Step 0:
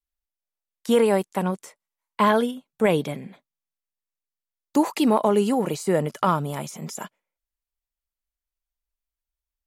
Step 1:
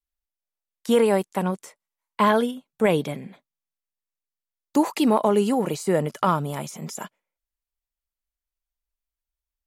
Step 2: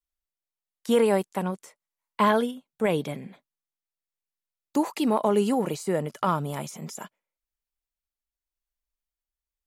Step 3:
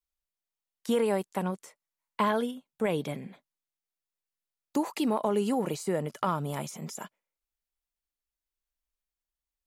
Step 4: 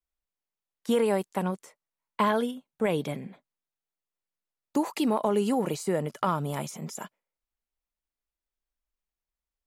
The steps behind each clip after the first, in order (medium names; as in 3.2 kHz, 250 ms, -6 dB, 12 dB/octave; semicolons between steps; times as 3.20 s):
no audible change
tremolo 0.91 Hz, depth 29%; trim -2 dB
compression 2:1, threshold -24 dBFS, peak gain reduction 4.5 dB; trim -1.5 dB
tape noise reduction on one side only decoder only; trim +2 dB